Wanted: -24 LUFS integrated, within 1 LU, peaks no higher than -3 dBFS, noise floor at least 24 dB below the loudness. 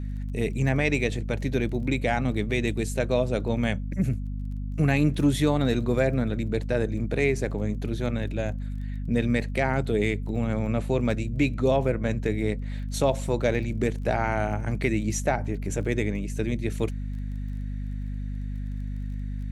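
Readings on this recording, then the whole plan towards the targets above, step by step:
ticks 19/s; hum 50 Hz; harmonics up to 250 Hz; hum level -29 dBFS; loudness -27.0 LUFS; peak -9.0 dBFS; loudness target -24.0 LUFS
-> de-click; notches 50/100/150/200/250 Hz; gain +3 dB

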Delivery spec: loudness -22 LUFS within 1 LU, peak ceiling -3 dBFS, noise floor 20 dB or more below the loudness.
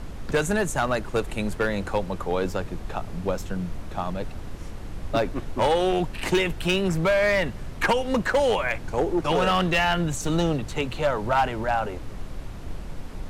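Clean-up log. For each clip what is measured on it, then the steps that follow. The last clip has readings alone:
clipped 1.4%; flat tops at -15.5 dBFS; noise floor -37 dBFS; noise floor target -45 dBFS; loudness -25.0 LUFS; peak -15.5 dBFS; loudness target -22.0 LUFS
-> clip repair -15.5 dBFS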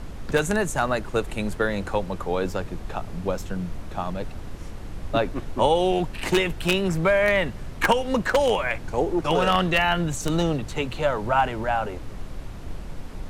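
clipped 0.0%; noise floor -37 dBFS; noise floor target -45 dBFS
-> noise print and reduce 8 dB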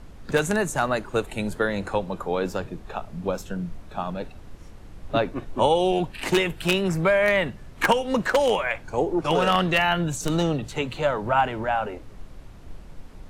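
noise floor -44 dBFS; noise floor target -45 dBFS
-> noise print and reduce 6 dB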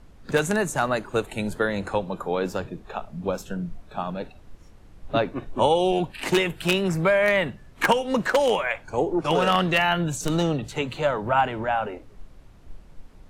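noise floor -49 dBFS; loudness -24.5 LUFS; peak -6.0 dBFS; loudness target -22.0 LUFS
-> gain +2.5 dB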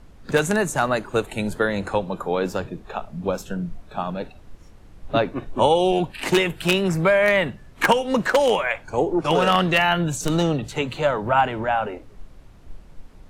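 loudness -22.0 LUFS; peak -3.5 dBFS; noise floor -46 dBFS

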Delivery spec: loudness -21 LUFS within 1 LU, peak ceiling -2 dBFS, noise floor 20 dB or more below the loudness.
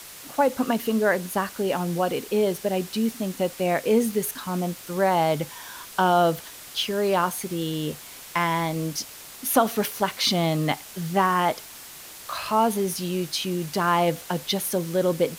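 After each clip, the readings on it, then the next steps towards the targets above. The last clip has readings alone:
noise floor -43 dBFS; noise floor target -45 dBFS; loudness -25.0 LUFS; peak -6.5 dBFS; loudness target -21.0 LUFS
-> denoiser 6 dB, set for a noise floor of -43 dBFS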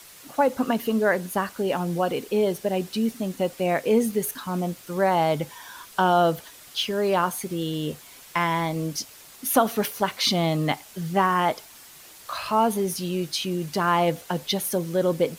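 noise floor -47 dBFS; loudness -25.0 LUFS; peak -6.5 dBFS; loudness target -21.0 LUFS
-> gain +4 dB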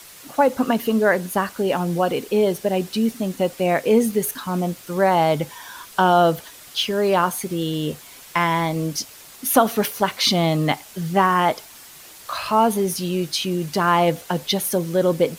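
loudness -21.0 LUFS; peak -2.5 dBFS; noise floor -43 dBFS

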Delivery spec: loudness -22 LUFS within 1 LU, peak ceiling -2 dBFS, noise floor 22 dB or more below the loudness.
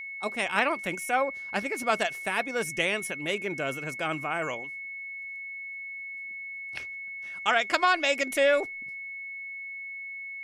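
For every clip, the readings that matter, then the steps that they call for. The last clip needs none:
steady tone 2200 Hz; tone level -36 dBFS; loudness -29.5 LUFS; peak -9.5 dBFS; loudness target -22.0 LUFS
-> notch 2200 Hz, Q 30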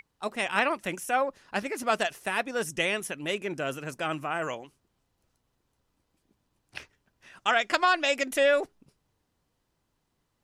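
steady tone none; loudness -28.0 LUFS; peak -10.0 dBFS; loudness target -22.0 LUFS
-> gain +6 dB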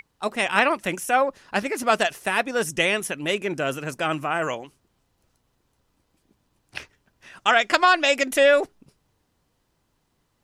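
loudness -22.0 LUFS; peak -4.0 dBFS; noise floor -71 dBFS

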